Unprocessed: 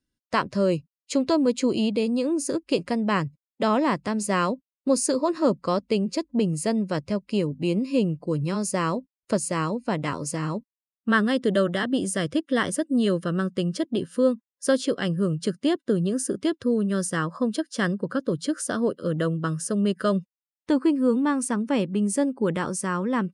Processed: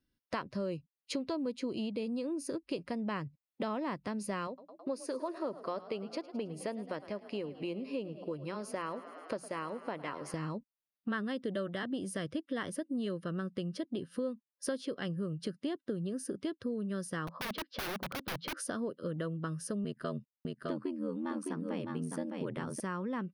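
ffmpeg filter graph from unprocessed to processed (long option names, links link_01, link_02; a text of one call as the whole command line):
ffmpeg -i in.wav -filter_complex "[0:a]asettb=1/sr,asplit=3[link_01][link_02][link_03];[link_01]atrim=end=4.474[link_04];[link_02]atrim=start=4.47:end=10.34,asetpts=PTS-STARTPTS,afade=type=in:duration=0.004:curve=qsin,afade=type=out:start_time=5.866:duration=0.004:curve=qsin,bass=frequency=250:gain=-13,treble=frequency=4000:gain=-7,bandreject=frequency=59.64:width_type=h:width=4,bandreject=frequency=119.28:width_type=h:width=4,bandreject=frequency=178.92:width_type=h:width=4,asplit=8[link_05][link_06][link_07][link_08][link_09][link_10][link_11][link_12];[link_06]adelay=107,afreqshift=34,volume=-17.5dB[link_13];[link_07]adelay=214,afreqshift=68,volume=-21.2dB[link_14];[link_08]adelay=321,afreqshift=102,volume=-25dB[link_15];[link_09]adelay=428,afreqshift=136,volume=-28.7dB[link_16];[link_10]adelay=535,afreqshift=170,volume=-32.5dB[link_17];[link_11]adelay=642,afreqshift=204,volume=-36.2dB[link_18];[link_12]adelay=749,afreqshift=238,volume=-40dB[link_19];[link_05][link_13][link_14][link_15][link_16][link_17][link_18][link_19]amix=inputs=8:normalize=0,atrim=end_sample=258867[link_20];[link_03]atrim=start=10.336[link_21];[link_04][link_20]acrossfade=duration=0.004:curve1=hsin:curve2=qsin[link_22];[link_22][link_21]acrossfade=duration=0.004:curve1=qsin:curve2=hsin,asettb=1/sr,asplit=3[link_23][link_24][link_25];[link_23]atrim=end=17.274[link_26];[link_24]atrim=start=17.27:end=18.57,asetpts=PTS-STARTPTS,afade=type=in:duration=0.004:curve=qsin,afade=type=out:start_time=1.296:duration=0.004:curve=qsin,lowpass=frequency=3800:width=0.5412,lowpass=frequency=3800:width=1.3066,equalizer=frequency=1600:width_type=o:width=0.37:gain=-6.5,aeval=exprs='(mod(20*val(0)+1,2)-1)/20':channel_layout=same[link_27];[link_25]atrim=start=18.566[link_28];[link_26][link_27]acrossfade=duration=0.004:curve1=hsin:curve2=qsin[link_29];[link_29][link_28]acrossfade=duration=0.004:curve1=qsin:curve2=hsin,asettb=1/sr,asplit=3[link_30][link_31][link_32];[link_30]atrim=end=19.844[link_33];[link_31]atrim=start=19.84:end=22.8,asetpts=PTS-STARTPTS,afade=type=in:duration=0.004:curve=qsin,afade=type=out:start_time=2.956:duration=0.004:curve=qsin,aeval=exprs='val(0)*sin(2*PI*42*n/s)':channel_layout=same,aecho=1:1:609:0.501,atrim=end_sample=130536[link_34];[link_32]atrim=start=22.796[link_35];[link_33][link_34]acrossfade=duration=0.004:curve1=hsin:curve2=qsin[link_36];[link_36][link_35]acrossfade=duration=0.004:curve1=qsin:curve2=hsin,equalizer=frequency=7500:width_type=o:width=0.43:gain=-14.5,acompressor=threshold=-38dB:ratio=3" out.wav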